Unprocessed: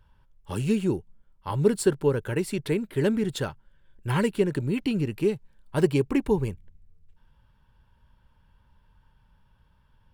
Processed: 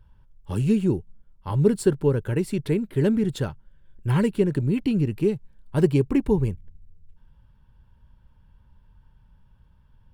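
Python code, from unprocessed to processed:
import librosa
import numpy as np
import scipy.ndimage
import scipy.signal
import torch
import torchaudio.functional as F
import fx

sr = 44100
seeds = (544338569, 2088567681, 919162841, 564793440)

y = fx.low_shelf(x, sr, hz=360.0, db=9.5)
y = F.gain(torch.from_numpy(y), -3.0).numpy()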